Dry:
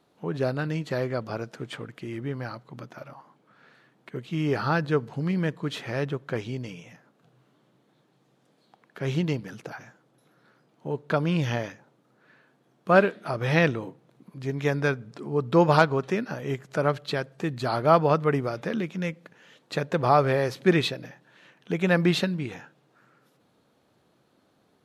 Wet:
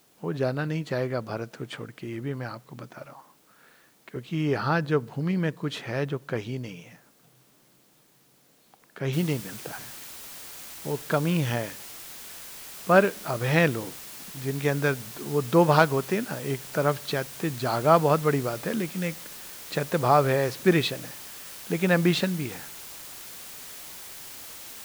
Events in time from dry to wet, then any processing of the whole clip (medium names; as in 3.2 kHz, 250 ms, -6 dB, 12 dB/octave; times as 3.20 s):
3.05–4.16 s: bass shelf 110 Hz -11.5 dB
9.13 s: noise floor step -63 dB -42 dB